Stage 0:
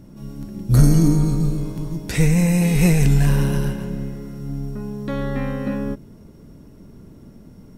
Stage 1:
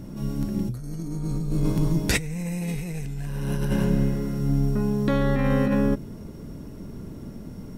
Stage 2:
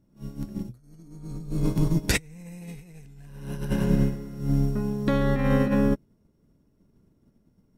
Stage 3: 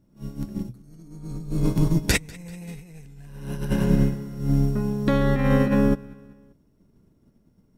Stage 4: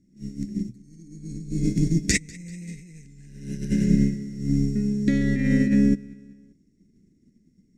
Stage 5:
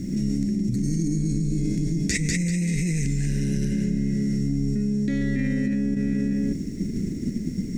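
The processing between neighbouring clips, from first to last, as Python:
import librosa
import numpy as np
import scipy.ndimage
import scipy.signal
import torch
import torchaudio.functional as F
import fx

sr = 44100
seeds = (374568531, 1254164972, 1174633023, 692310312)

y1 = fx.over_compress(x, sr, threshold_db=-25.0, ratio=-1.0)
y2 = fx.upward_expand(y1, sr, threshold_db=-38.0, expansion=2.5)
y2 = F.gain(torch.from_numpy(y2), 2.0).numpy()
y3 = fx.echo_feedback(y2, sr, ms=194, feedback_pct=52, wet_db=-23.0)
y3 = F.gain(torch.from_numpy(y3), 2.5).numpy()
y4 = fx.curve_eq(y3, sr, hz=(130.0, 200.0, 350.0, 1100.0, 2000.0, 3000.0, 7000.0, 12000.0), db=(0, 8, 4, -29, 8, -5, 12, -10))
y4 = F.gain(torch.from_numpy(y4), -4.5).numpy()
y5 = fx.env_flatten(y4, sr, amount_pct=100)
y5 = F.gain(torch.from_numpy(y5), -8.0).numpy()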